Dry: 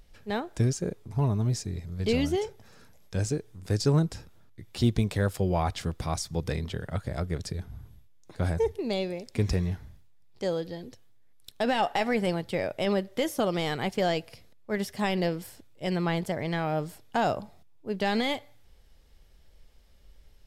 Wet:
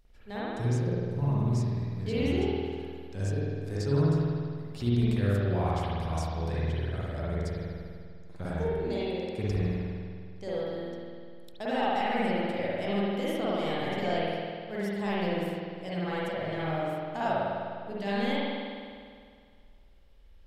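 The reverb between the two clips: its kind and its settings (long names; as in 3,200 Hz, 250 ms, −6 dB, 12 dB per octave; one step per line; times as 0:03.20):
spring reverb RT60 2.1 s, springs 50 ms, chirp 30 ms, DRR −9 dB
level −11 dB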